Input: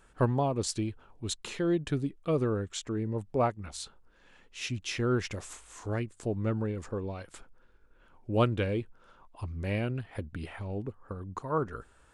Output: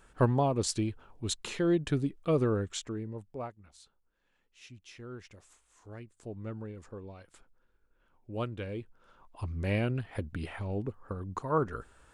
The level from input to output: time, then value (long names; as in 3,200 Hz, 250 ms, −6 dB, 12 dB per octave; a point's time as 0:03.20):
0:02.72 +1 dB
0:03.00 −5.5 dB
0:03.69 −16.5 dB
0:05.69 −16.5 dB
0:06.35 −9.5 dB
0:08.55 −9.5 dB
0:09.50 +1.5 dB